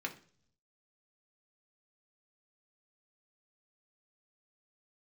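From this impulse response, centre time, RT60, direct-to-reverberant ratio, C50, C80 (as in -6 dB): 9 ms, 0.50 s, 1.0 dB, 14.0 dB, 19.0 dB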